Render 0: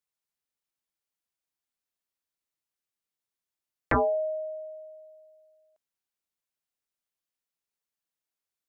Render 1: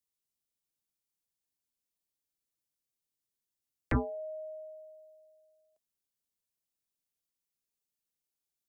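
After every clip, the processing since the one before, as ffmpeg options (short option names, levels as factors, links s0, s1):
-filter_complex "[0:a]equalizer=f=1400:t=o:w=2.4:g=-11.5,bandreject=f=650:w=15,acrossover=split=200|310|1100[s0][s1][s2][s3];[s2]acompressor=threshold=0.00708:ratio=6[s4];[s0][s1][s4][s3]amix=inputs=4:normalize=0,volume=1.26"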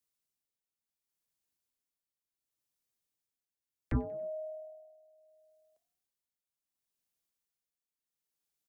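-filter_complex "[0:a]acrossover=split=340[s0][s1];[s1]alimiter=level_in=2.66:limit=0.0631:level=0:latency=1:release=358,volume=0.376[s2];[s0][s2]amix=inputs=2:normalize=0,tremolo=f=0.7:d=0.65,asplit=4[s3][s4][s5][s6];[s4]adelay=93,afreqshift=39,volume=0.0708[s7];[s5]adelay=186,afreqshift=78,volume=0.0367[s8];[s6]adelay=279,afreqshift=117,volume=0.0191[s9];[s3][s7][s8][s9]amix=inputs=4:normalize=0,volume=1.26"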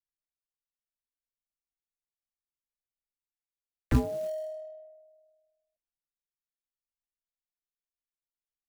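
-af "acrusher=bits=5:mode=log:mix=0:aa=0.000001,tremolo=f=1:d=0.3,anlmdn=0.000158,volume=2.24"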